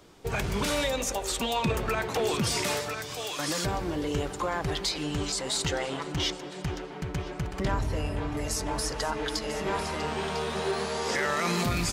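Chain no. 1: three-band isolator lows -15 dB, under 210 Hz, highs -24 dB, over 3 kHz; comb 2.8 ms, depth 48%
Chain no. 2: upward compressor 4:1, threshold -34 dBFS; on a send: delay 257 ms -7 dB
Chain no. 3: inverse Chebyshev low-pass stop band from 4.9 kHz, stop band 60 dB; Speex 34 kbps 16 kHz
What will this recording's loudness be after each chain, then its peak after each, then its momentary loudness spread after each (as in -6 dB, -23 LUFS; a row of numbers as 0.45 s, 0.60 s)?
-32.0 LUFS, -29.0 LUFS, -32.0 LUFS; -16.0 dBFS, -16.0 dBFS, -16.0 dBFS; 8 LU, 6 LU, 7 LU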